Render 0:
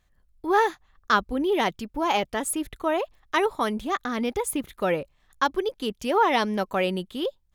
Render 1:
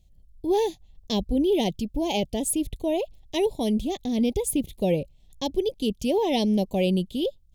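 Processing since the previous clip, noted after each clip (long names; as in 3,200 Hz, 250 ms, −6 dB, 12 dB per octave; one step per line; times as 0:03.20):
Chebyshev band-stop filter 630–3,000 Hz, order 2
bass and treble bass +11 dB, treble +3 dB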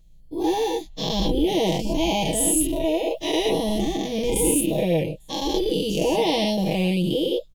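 every bin's largest magnitude spread in time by 240 ms
comb filter 6.2 ms, depth 71%
level −4.5 dB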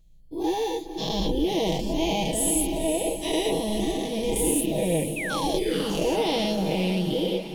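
sound drawn into the spectrogram fall, 0:05.16–0:05.73, 280–2,700 Hz −28 dBFS
feedback delay with all-pass diffusion 496 ms, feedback 51%, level −9 dB
level −3.5 dB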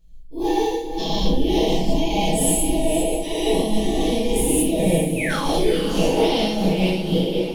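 rectangular room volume 120 cubic metres, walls mixed, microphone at 1.5 metres
amplitude modulation by smooth noise, depth 60%
level +1.5 dB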